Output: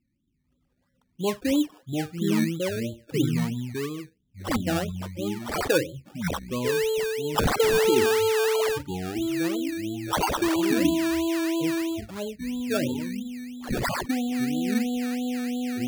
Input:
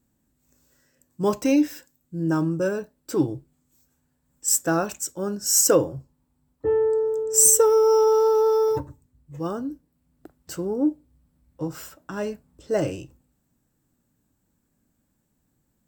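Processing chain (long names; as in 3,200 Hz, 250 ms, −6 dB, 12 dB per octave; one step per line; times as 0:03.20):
delay with pitch and tempo change per echo 279 ms, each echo −5 semitones, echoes 2
spectral peaks only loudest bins 16
sample-and-hold swept by an LFO 17×, swing 60% 3 Hz
level −4 dB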